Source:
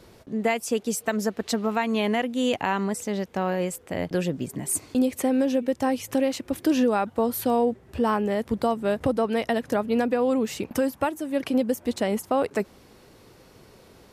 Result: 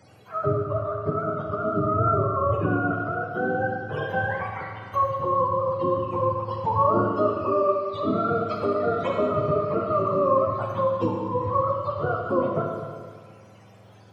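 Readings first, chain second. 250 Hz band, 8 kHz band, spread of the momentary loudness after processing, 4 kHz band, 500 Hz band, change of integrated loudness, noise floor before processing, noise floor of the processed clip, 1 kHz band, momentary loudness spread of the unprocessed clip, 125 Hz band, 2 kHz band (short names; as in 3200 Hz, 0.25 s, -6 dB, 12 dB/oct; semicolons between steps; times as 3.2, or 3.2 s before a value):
-5.5 dB, under -30 dB, 6 LU, -12.0 dB, +1.5 dB, +1.0 dB, -53 dBFS, -50 dBFS, +5.5 dB, 5 LU, +8.0 dB, +0.5 dB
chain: spectrum mirrored in octaves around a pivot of 530 Hz; Schroeder reverb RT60 1.8 s, combs from 28 ms, DRR 0.5 dB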